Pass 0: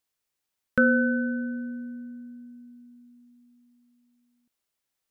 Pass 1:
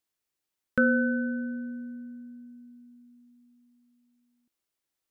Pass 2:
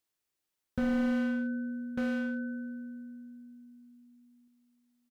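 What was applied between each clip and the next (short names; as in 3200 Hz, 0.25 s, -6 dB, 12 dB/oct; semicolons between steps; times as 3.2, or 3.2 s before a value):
bell 330 Hz +6 dB 0.4 oct; gain -3 dB
echo 1.198 s -9 dB; slew limiter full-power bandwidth 17 Hz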